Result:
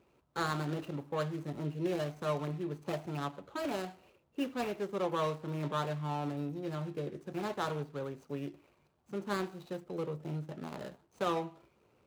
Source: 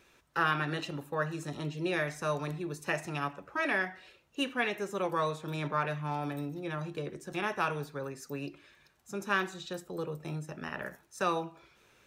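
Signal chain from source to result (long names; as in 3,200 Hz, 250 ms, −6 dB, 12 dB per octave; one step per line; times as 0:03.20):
running median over 25 samples
high-pass filter 63 Hz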